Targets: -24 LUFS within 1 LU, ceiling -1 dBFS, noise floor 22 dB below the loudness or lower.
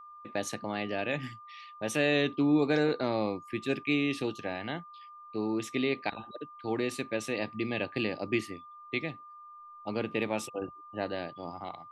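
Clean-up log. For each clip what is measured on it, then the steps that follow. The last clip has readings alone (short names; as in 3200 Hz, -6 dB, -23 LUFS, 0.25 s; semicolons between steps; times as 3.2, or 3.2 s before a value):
steady tone 1200 Hz; tone level -47 dBFS; loudness -32.5 LUFS; peak -14.5 dBFS; loudness target -24.0 LUFS
-> notch 1200 Hz, Q 30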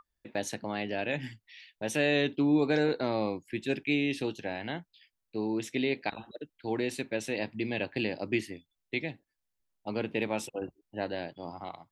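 steady tone none; loudness -32.5 LUFS; peak -14.5 dBFS; loudness target -24.0 LUFS
-> gain +8.5 dB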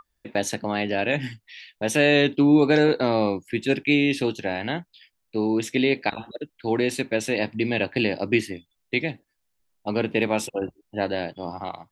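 loudness -24.0 LUFS; peak -6.0 dBFS; noise floor -75 dBFS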